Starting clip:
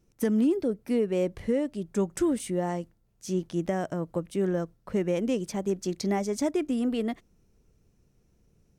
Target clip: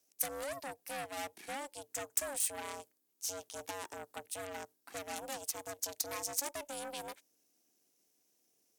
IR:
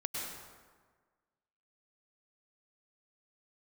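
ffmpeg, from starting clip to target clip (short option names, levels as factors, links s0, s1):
-filter_complex "[0:a]aeval=exprs='0.178*(cos(1*acos(clip(val(0)/0.178,-1,1)))-cos(1*PI/2))+0.0224*(cos(8*acos(clip(val(0)/0.178,-1,1)))-cos(8*PI/2))':c=same,acrossover=split=180|1300|6300[s0][s1][s2][s3];[s2]alimiter=level_in=2.99:limit=0.0631:level=0:latency=1:release=431,volume=0.335[s4];[s0][s1][s4][s3]amix=inputs=4:normalize=0,aeval=exprs='val(0)*sin(2*PI*280*n/s)':c=same,aderivative,volume=2.66"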